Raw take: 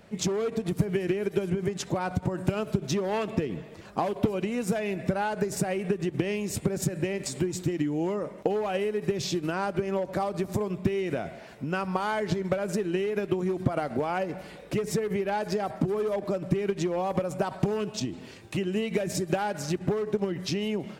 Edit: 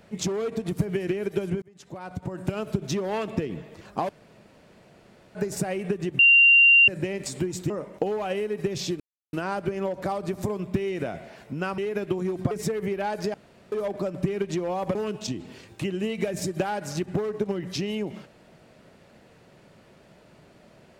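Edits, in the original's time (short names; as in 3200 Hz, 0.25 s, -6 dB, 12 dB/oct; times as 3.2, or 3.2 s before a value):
1.62–2.7 fade in
4.09–5.35 room tone
6.19–6.88 bleep 2770 Hz -12 dBFS
7.7–8.14 cut
9.44 insert silence 0.33 s
11.89–12.99 cut
13.72–14.79 cut
15.62–16 room tone
17.23–17.68 cut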